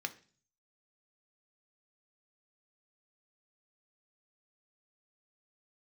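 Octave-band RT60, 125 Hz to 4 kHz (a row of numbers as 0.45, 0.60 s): 0.80, 0.55, 0.45, 0.40, 0.40, 0.50 s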